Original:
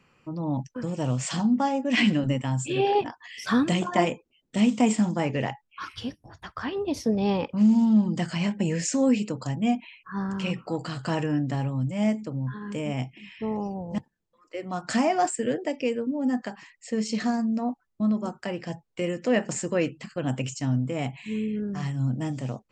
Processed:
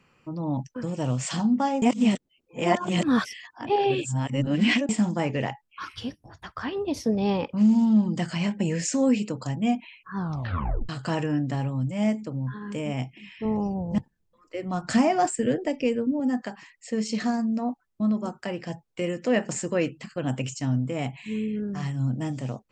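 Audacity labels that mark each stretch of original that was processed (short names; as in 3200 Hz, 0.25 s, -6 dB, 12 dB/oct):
1.820000	4.890000	reverse
10.170000	10.170000	tape stop 0.72 s
13.450000	16.200000	low shelf 160 Hz +12 dB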